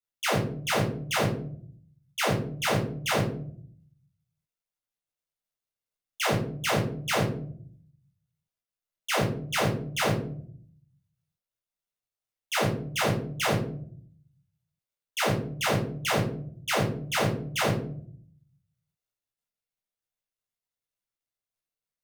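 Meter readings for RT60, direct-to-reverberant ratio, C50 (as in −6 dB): 0.60 s, −4.5 dB, 7.0 dB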